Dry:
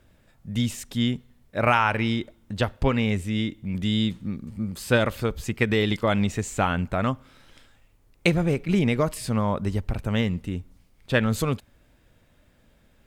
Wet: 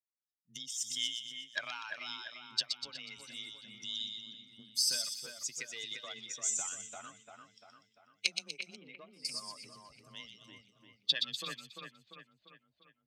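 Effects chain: expander on every frequency bin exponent 2; recorder AGC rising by 44 dB/s; 0.76–1.63 s: high-order bell 2.1 kHz +15 dB 1.3 oct; valve stage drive 3 dB, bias 0.55; band-pass sweep 5.6 kHz -> 800 Hz, 10.91–12.10 s; on a send: two-band feedback delay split 2.7 kHz, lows 345 ms, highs 122 ms, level -5 dB; on the sum: frequency shift +21 Hz; 4.41–5.04 s: band-stop 7 kHz, Q 12; 8.76–9.25 s: distance through air 450 m; trim +1.5 dB

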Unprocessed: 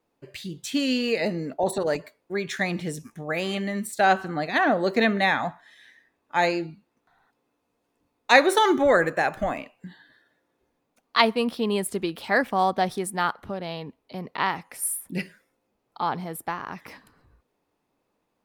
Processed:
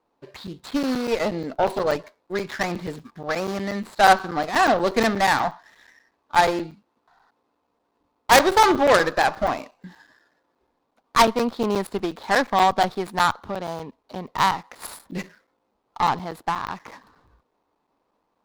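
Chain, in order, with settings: median filter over 15 samples; graphic EQ 125/1000/4000 Hz -5/+7/+8 dB; Chebyshev shaper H 4 -9 dB, 5 -23 dB, 6 -10 dB, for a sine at -5 dBFS; crackling interface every 0.12 s, samples 256, zero, from 0.47 s; trim -1 dB

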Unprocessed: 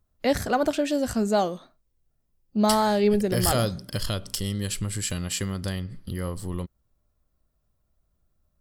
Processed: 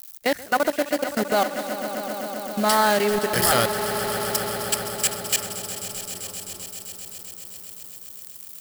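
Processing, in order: zero-crossing glitches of -20.5 dBFS; level held to a coarse grid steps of 23 dB; bass shelf 180 Hz -11.5 dB; echo with a slow build-up 130 ms, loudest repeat 5, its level -13 dB; dynamic bell 1.8 kHz, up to +8 dB, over -46 dBFS, Q 1.1; trim +4 dB

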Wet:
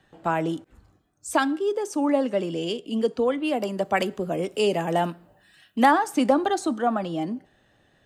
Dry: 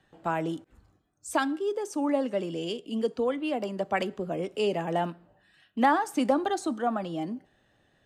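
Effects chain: 3.43–5.90 s: treble shelf 10 kHz -> 6.1 kHz +12 dB; trim +4.5 dB

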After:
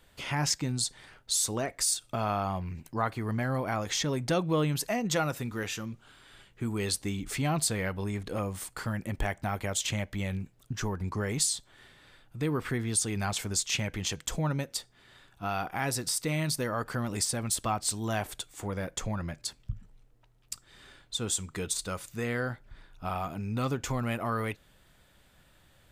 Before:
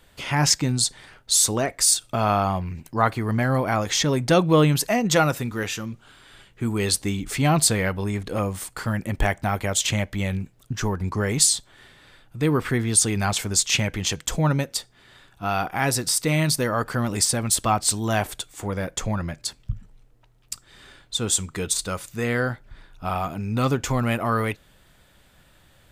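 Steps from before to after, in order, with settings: compression 1.5:1, threshold -26 dBFS, peak gain reduction 5 dB; trim -5.5 dB

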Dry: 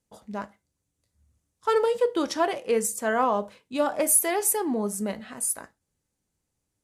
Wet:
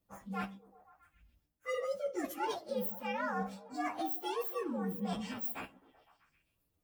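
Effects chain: frequency axis rescaled in octaves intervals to 124%; reverse; compression 6:1, threshold -38 dBFS, peak gain reduction 16 dB; reverse; repeats whose band climbs or falls 128 ms, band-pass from 220 Hz, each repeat 0.7 oct, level -11 dB; trim +3.5 dB

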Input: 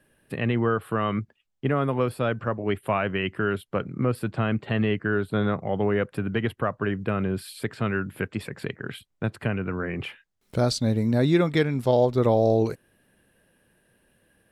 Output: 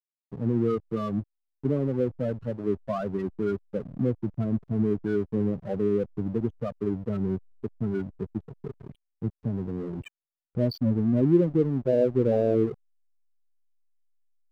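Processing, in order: dynamic bell 290 Hz, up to +5 dB, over -34 dBFS, Q 0.78; loudest bins only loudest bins 8; hysteresis with a dead band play -31.5 dBFS; trim -3.5 dB

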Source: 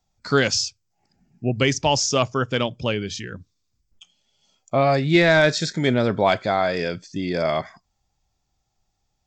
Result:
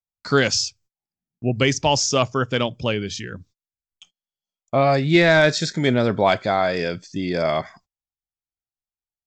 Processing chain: gate -51 dBFS, range -31 dB; trim +1 dB

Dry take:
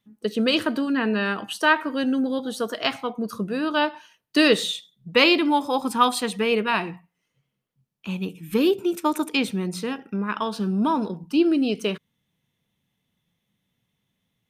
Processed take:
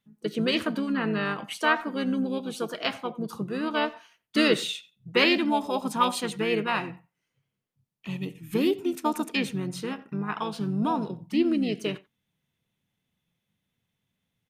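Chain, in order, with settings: harmony voices -5 st -7 dB; speakerphone echo 90 ms, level -20 dB; trim -5 dB

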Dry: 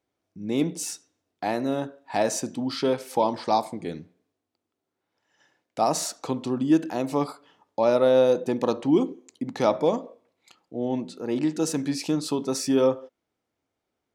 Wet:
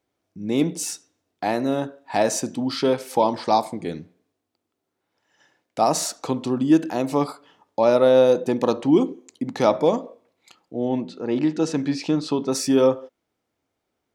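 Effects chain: 10.89–12.52 s: low-pass 4.5 kHz 12 dB/octave; trim +3.5 dB

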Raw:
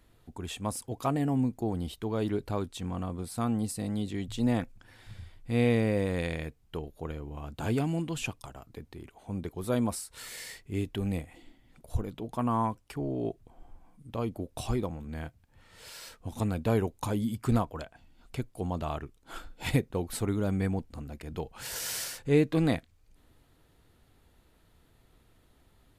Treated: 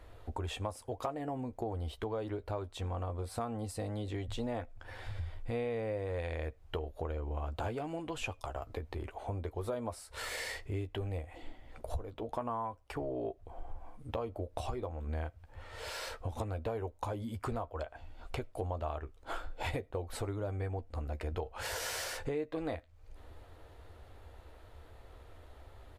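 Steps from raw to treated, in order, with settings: FFT filter 100 Hz 0 dB, 160 Hz -17 dB, 550 Hz +3 dB, 13 kHz -14 dB; compression 6:1, threshold -46 dBFS, peak gain reduction 22 dB; doubling 13 ms -10.5 dB; reverberation RT60 0.20 s, pre-delay 50 ms, DRR 31.5 dB; trim +10.5 dB

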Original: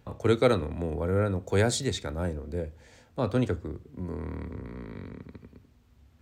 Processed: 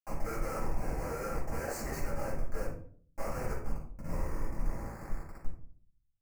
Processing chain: high-pass 680 Hz 24 dB/octave; treble shelf 2.9 kHz -5.5 dB; in parallel at -3 dB: compression 10:1, threshold -49 dBFS, peak gain reduction 24 dB; on the sum: saturation -20.5 dBFS, distortion -20 dB; short-mantissa float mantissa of 2-bit; Schmitt trigger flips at -43 dBFS; Butterworth band-stop 3.5 kHz, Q 1.1; simulated room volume 490 m³, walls furnished, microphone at 7.9 m; trim -7 dB

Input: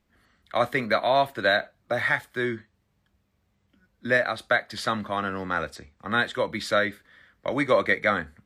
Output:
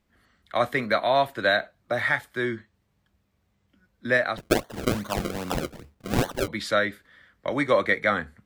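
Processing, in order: 4.37–6.48 s: decimation with a swept rate 34×, swing 100% 2.5 Hz

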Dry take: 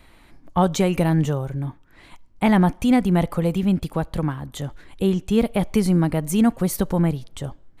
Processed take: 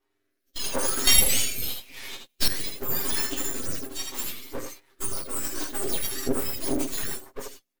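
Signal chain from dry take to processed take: spectrum inverted on a logarithmic axis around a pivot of 1.9 kHz; peak limiter -19.5 dBFS, peak gain reduction 10 dB; comb 7.5 ms, depth 80%; on a send: early reflections 20 ms -9.5 dB, 80 ms -5.5 dB; on the sum: level rider gain up to 13 dB; 1.07–2.48 s: resonant high shelf 1.9 kHz +11.5 dB, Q 3; half-wave rectifier; rotary cabinet horn 0.85 Hz, later 6.7 Hz, at 3.95 s; harmonic-percussive split harmonic +5 dB; gate -34 dBFS, range -12 dB; trim -9 dB

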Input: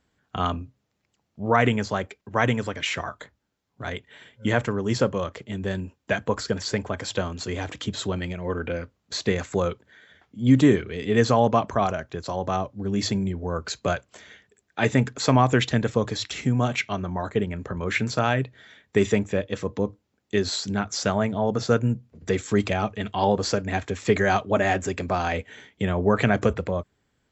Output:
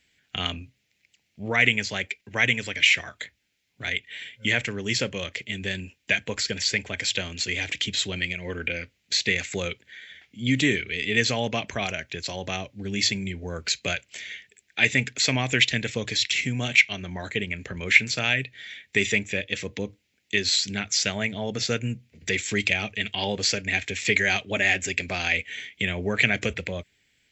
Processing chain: resonant high shelf 1.6 kHz +11.5 dB, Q 3; in parallel at -2.5 dB: compression, threshold -24 dBFS, peak gain reduction 20 dB; on the sum: trim -8.5 dB

